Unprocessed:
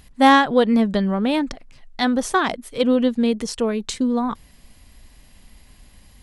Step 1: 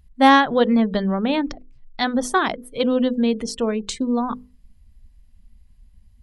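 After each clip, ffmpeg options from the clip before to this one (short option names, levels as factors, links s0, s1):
-af "afftdn=nr=21:nf=-40,bandreject=f=50:t=h:w=6,bandreject=f=100:t=h:w=6,bandreject=f=150:t=h:w=6,bandreject=f=200:t=h:w=6,bandreject=f=250:t=h:w=6,bandreject=f=300:t=h:w=6,bandreject=f=350:t=h:w=6,bandreject=f=400:t=h:w=6,bandreject=f=450:t=h:w=6,bandreject=f=500:t=h:w=6"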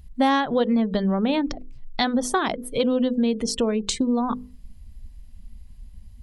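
-af "equalizer=f=1600:t=o:w=1.4:g=-3.5,acompressor=threshold=0.0316:ratio=3,volume=2.51"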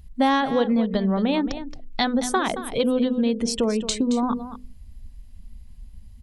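-af "aecho=1:1:223:0.251"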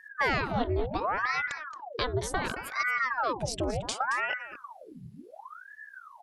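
-af "aeval=exprs='val(0)*sin(2*PI*940*n/s+940*0.85/0.69*sin(2*PI*0.69*n/s))':c=same,volume=0.562"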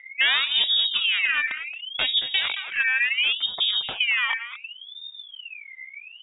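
-af "lowpass=f=3200:t=q:w=0.5098,lowpass=f=3200:t=q:w=0.6013,lowpass=f=3200:t=q:w=0.9,lowpass=f=3200:t=q:w=2.563,afreqshift=-3800,volume=2.11"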